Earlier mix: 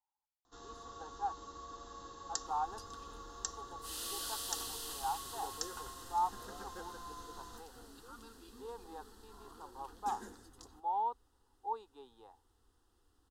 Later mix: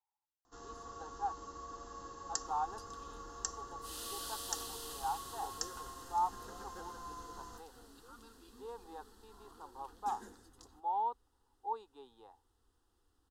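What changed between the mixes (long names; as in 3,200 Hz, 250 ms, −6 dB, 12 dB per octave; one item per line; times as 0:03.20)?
first sound: add parametric band 3,700 Hz −11 dB 0.32 octaves
second sound −4.5 dB
reverb: on, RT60 0.95 s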